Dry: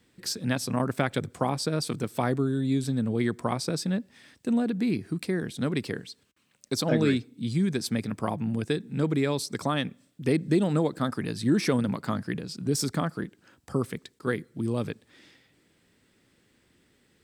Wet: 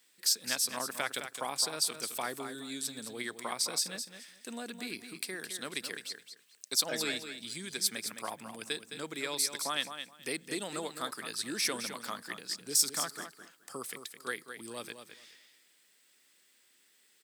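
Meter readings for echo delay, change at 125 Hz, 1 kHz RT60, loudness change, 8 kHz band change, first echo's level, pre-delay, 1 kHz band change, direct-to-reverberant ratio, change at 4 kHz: 0.213 s, -25.5 dB, none, -5.5 dB, +6.5 dB, -9.0 dB, none, -6.0 dB, none, +3.0 dB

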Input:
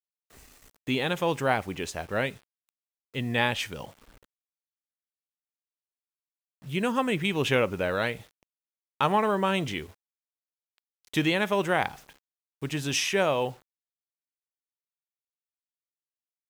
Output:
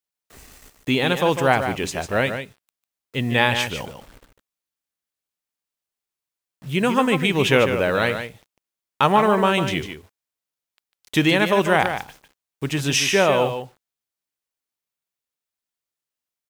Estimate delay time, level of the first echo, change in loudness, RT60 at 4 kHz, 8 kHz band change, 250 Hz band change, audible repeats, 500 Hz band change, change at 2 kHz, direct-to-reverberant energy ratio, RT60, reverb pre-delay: 0.149 s, -8.5 dB, +7.5 dB, none, +7.5 dB, +7.5 dB, 1, +7.5 dB, +7.5 dB, none, none, none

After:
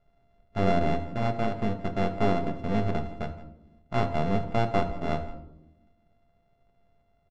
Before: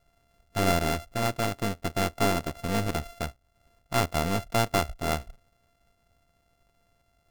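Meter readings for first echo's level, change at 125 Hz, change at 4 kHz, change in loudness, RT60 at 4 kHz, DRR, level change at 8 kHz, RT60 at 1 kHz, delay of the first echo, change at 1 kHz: -17.5 dB, +1.0 dB, -9.0 dB, -0.5 dB, 0.55 s, 5.0 dB, under -20 dB, 0.75 s, 0.167 s, -0.5 dB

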